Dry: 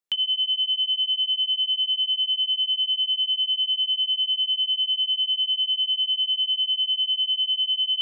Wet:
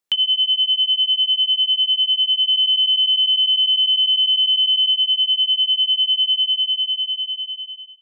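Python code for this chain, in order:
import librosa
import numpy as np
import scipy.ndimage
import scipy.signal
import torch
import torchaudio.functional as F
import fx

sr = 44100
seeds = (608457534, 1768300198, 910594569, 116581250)

y = fx.fade_out_tail(x, sr, length_s=1.71)
y = fx.env_flatten(y, sr, amount_pct=70, at=(2.48, 4.91))
y = y * librosa.db_to_amplitude(6.0)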